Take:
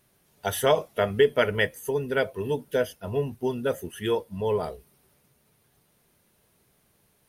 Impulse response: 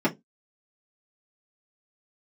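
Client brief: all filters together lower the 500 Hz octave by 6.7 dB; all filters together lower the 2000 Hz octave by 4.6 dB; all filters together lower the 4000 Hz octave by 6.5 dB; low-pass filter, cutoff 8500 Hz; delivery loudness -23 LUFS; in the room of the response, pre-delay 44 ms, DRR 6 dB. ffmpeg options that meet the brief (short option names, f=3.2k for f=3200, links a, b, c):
-filter_complex "[0:a]lowpass=8.5k,equalizer=f=500:t=o:g=-8,equalizer=f=2k:t=o:g=-4,equalizer=f=4k:t=o:g=-7,asplit=2[a][b];[1:a]atrim=start_sample=2205,adelay=44[c];[b][c]afir=irnorm=-1:irlink=0,volume=-19dB[d];[a][d]amix=inputs=2:normalize=0,volume=6.5dB"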